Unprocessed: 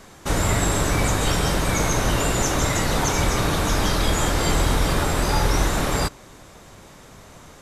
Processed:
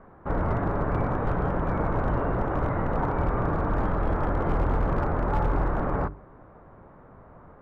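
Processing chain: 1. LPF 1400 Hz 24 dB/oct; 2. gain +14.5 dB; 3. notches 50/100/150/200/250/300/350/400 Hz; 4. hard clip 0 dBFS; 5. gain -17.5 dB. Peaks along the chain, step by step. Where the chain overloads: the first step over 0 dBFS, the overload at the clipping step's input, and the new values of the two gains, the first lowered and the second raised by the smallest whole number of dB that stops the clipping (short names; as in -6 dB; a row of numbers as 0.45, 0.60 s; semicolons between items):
-8.5, +6.0, +5.0, 0.0, -17.5 dBFS; step 2, 5.0 dB; step 2 +9.5 dB, step 5 -12.5 dB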